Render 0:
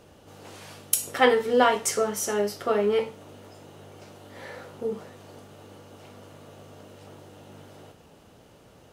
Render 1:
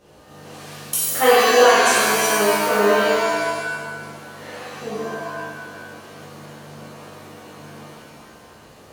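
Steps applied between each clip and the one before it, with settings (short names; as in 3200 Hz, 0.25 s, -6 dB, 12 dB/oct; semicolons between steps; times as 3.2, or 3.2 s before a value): shimmer reverb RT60 1.5 s, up +7 st, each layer -2 dB, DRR -9 dB; gain -4.5 dB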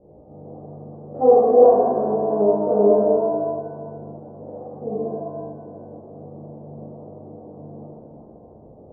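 steep low-pass 730 Hz 36 dB/oct; gain +2.5 dB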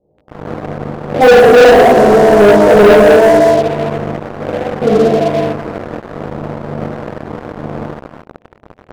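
sample leveller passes 5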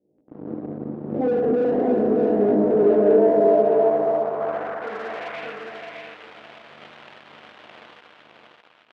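compressor 2:1, threshold -13 dBFS, peak gain reduction 5.5 dB; band-pass sweep 280 Hz -> 3100 Hz, 2.67–5.79; feedback echo 0.614 s, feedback 20%, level -4 dB; gain -2 dB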